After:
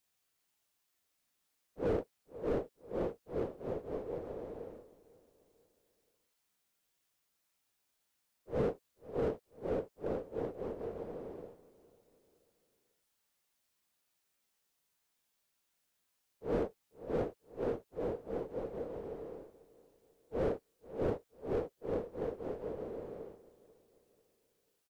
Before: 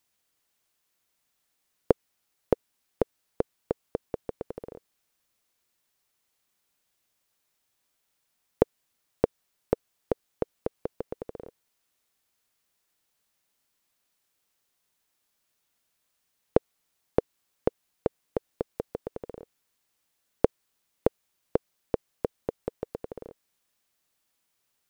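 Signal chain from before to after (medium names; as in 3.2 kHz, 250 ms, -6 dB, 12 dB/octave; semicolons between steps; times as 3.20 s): phase randomisation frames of 200 ms; feedback delay 490 ms, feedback 44%, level -20.5 dB; slew-rate limiter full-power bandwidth 25 Hz; trim -4 dB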